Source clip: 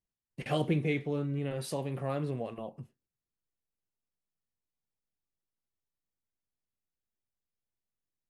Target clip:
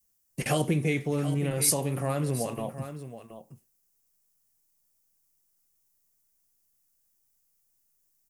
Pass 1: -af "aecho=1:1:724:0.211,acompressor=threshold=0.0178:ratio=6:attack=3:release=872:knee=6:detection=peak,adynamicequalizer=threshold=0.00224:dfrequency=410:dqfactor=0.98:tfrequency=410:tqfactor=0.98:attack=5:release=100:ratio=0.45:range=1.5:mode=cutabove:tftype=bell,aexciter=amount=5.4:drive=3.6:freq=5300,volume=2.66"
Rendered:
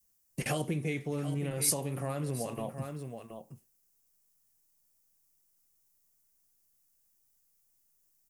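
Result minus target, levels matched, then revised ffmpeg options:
compression: peak gain reduction +7 dB
-af "aecho=1:1:724:0.211,acompressor=threshold=0.0473:ratio=6:attack=3:release=872:knee=6:detection=peak,adynamicequalizer=threshold=0.00224:dfrequency=410:dqfactor=0.98:tfrequency=410:tqfactor=0.98:attack=5:release=100:ratio=0.45:range=1.5:mode=cutabove:tftype=bell,aexciter=amount=5.4:drive=3.6:freq=5300,volume=2.66"

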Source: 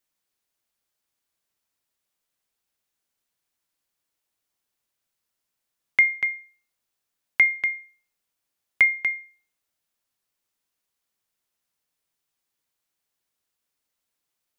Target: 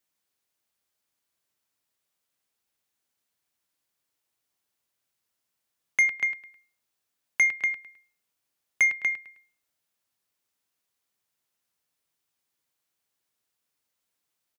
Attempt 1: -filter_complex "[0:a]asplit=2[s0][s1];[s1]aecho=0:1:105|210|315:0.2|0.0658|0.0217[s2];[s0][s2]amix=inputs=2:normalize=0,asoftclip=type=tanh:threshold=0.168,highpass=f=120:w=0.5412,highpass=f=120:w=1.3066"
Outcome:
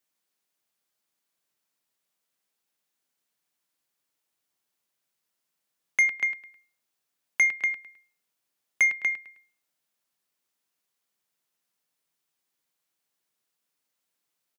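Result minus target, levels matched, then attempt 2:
125 Hz band -3.0 dB
-filter_complex "[0:a]asplit=2[s0][s1];[s1]aecho=0:1:105|210|315:0.2|0.0658|0.0217[s2];[s0][s2]amix=inputs=2:normalize=0,asoftclip=type=tanh:threshold=0.168,highpass=f=55:w=0.5412,highpass=f=55:w=1.3066"

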